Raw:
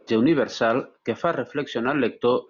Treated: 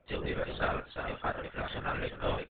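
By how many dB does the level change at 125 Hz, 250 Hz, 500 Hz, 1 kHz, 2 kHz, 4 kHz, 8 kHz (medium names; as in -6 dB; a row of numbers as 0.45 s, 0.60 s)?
-6.0 dB, -19.0 dB, -13.5 dB, -8.5 dB, -7.5 dB, -8.0 dB, no reading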